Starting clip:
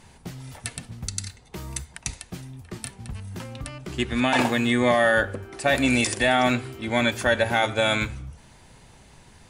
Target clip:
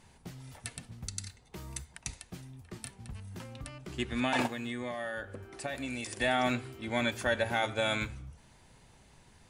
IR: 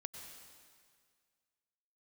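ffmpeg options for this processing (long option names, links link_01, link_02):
-filter_complex "[0:a]asplit=3[link_01][link_02][link_03];[link_01]afade=type=out:start_time=4.46:duration=0.02[link_04];[link_02]acompressor=threshold=-26dB:ratio=6,afade=type=in:start_time=4.46:duration=0.02,afade=type=out:start_time=6.2:duration=0.02[link_05];[link_03]afade=type=in:start_time=6.2:duration=0.02[link_06];[link_04][link_05][link_06]amix=inputs=3:normalize=0,volume=-8.5dB"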